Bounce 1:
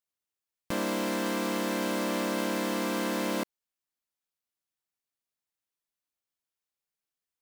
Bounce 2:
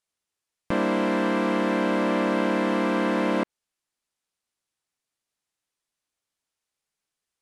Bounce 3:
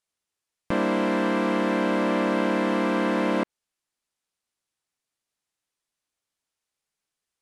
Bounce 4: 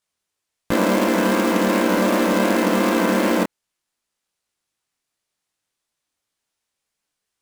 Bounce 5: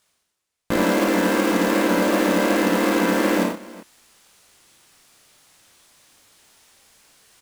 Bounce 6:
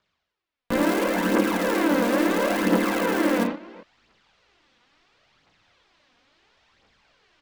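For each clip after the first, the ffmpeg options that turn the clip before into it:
-filter_complex "[0:a]lowpass=f=11k:w=0.5412,lowpass=f=11k:w=1.3066,acrossover=split=2900[a][b];[b]acompressor=threshold=-57dB:ratio=4:attack=1:release=60[c];[a][c]amix=inputs=2:normalize=0,volume=7dB"
-af anull
-af "flanger=delay=17.5:depth=8:speed=2.7,acrusher=bits=3:mode=log:mix=0:aa=0.000001,volume=8dB"
-af "areverse,acompressor=mode=upward:threshold=-34dB:ratio=2.5,areverse,aecho=1:1:54|93|122|371:0.596|0.355|0.15|0.112,volume=-2dB"
-filter_complex "[0:a]aphaser=in_gain=1:out_gain=1:delay=4.3:decay=0.48:speed=0.73:type=triangular,acrossover=split=390|440|4400[a][b][c][d];[d]acrusher=bits=4:mix=0:aa=0.000001[e];[a][b][c][e]amix=inputs=4:normalize=0,volume=-4dB"

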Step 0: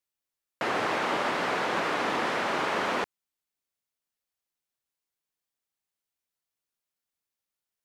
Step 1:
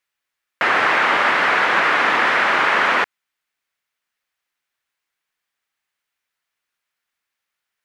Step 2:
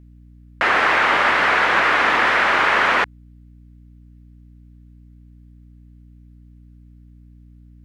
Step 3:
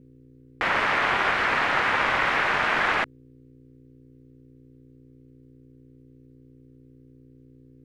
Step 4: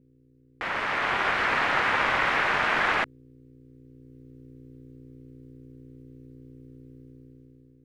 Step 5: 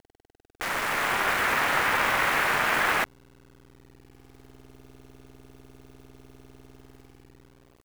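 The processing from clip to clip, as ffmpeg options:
-af "equalizer=f=1.8k:w=0.59:g=14,volume=2dB"
-af "aeval=exprs='val(0)+0.00631*(sin(2*PI*60*n/s)+sin(2*PI*2*60*n/s)/2+sin(2*PI*3*60*n/s)/3+sin(2*PI*4*60*n/s)/4+sin(2*PI*5*60*n/s)/5)':c=same"
-af "aeval=exprs='val(0)*sin(2*PI*200*n/s)':c=same,volume=-3.5dB"
-af "dynaudnorm=f=280:g=7:m=13dB,volume=-8.5dB"
-af "acrusher=bits=6:dc=4:mix=0:aa=0.000001"

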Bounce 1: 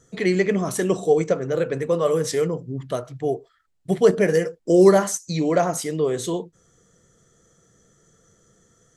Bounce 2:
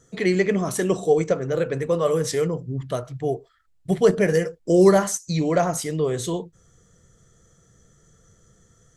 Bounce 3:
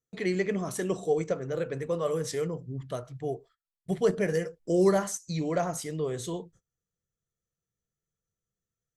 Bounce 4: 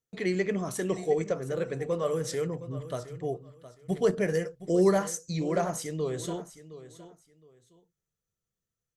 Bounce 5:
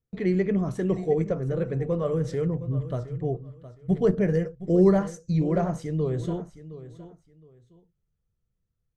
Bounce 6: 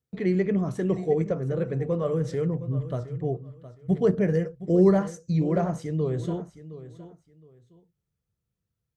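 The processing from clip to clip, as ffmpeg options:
-af "asubboost=boost=2.5:cutoff=150"
-af "agate=range=-26dB:threshold=-47dB:ratio=16:detection=peak,volume=-8dB"
-af "aecho=1:1:715|1430:0.178|0.0409"
-af "aemphasis=mode=reproduction:type=riaa,volume=-1dB"
-af "highpass=71"

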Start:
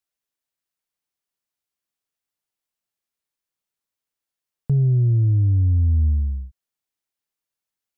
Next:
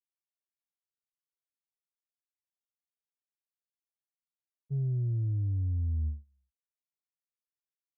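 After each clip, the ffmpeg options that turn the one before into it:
-af "agate=range=-37dB:threshold=-17dB:ratio=16:detection=peak,volume=-8dB"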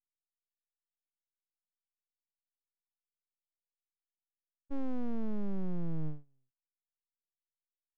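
-af "aeval=exprs='abs(val(0))':c=same"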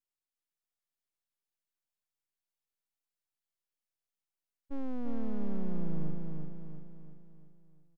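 -af "aecho=1:1:343|686|1029|1372|1715|2058:0.631|0.309|0.151|0.0742|0.0364|0.0178,volume=-1dB"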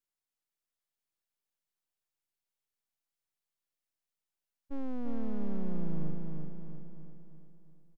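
-filter_complex "[0:a]asplit=2[a][b];[b]adelay=932.9,volume=-20dB,highshelf=f=4k:g=-21[c];[a][c]amix=inputs=2:normalize=0"

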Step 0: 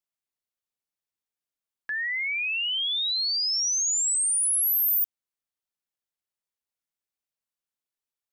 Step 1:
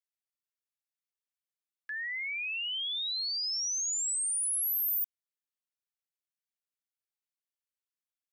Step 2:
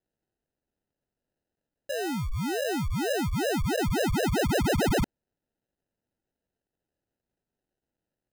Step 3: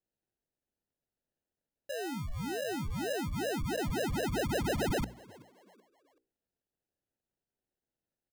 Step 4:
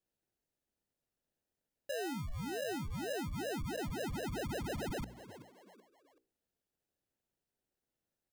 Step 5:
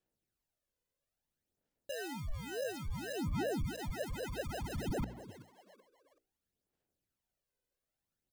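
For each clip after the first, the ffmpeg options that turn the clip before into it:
-af "highpass=f=1.3k:w=0.5412,highpass=f=1.3k:w=1.3066,volume=-7dB"
-af "acrusher=samples=39:mix=1:aa=0.000001,volume=6dB"
-filter_complex "[0:a]bandreject=f=60:t=h:w=6,bandreject=f=120:t=h:w=6,bandreject=f=180:t=h:w=6,bandreject=f=240:t=h:w=6,bandreject=f=300:t=h:w=6,asplit=4[a][b][c][d];[b]adelay=379,afreqshift=89,volume=-23dB[e];[c]adelay=758,afreqshift=178,volume=-31.4dB[f];[d]adelay=1137,afreqshift=267,volume=-39.8dB[g];[a][e][f][g]amix=inputs=4:normalize=0,volume=-6.5dB"
-af "alimiter=level_in=11dB:limit=-24dB:level=0:latency=1:release=172,volume=-11dB,volume=1dB"
-af "aphaser=in_gain=1:out_gain=1:delay=2:decay=0.57:speed=0.59:type=sinusoidal,volume=-2.5dB"

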